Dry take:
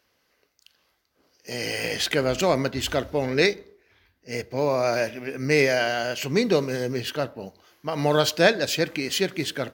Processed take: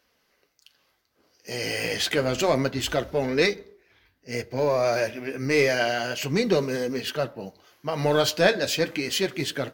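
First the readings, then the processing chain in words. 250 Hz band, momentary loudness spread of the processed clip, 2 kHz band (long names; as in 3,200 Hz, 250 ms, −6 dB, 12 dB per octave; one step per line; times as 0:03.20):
−1.0 dB, 11 LU, −1.0 dB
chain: in parallel at −4 dB: soft clipping −18 dBFS, distortion −11 dB
on the sum: flanger 0.29 Hz, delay 3.8 ms, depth 7.4 ms, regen −45%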